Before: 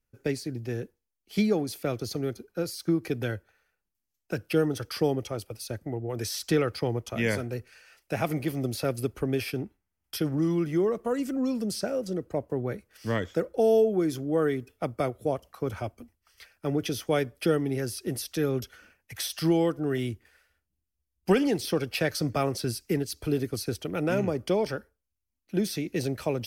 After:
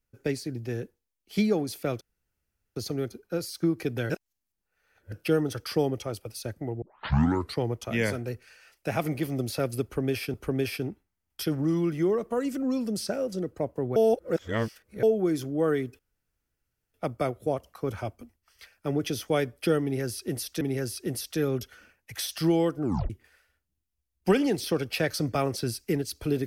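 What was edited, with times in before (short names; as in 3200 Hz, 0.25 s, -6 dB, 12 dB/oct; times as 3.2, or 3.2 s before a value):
2.01 insert room tone 0.75 s
3.35–4.37 reverse
6.07 tape start 0.77 s
9.08–9.59 loop, 2 plays
12.7–13.77 reverse
14.73 insert room tone 0.95 s
17.62–18.4 loop, 2 plays
19.84 tape stop 0.27 s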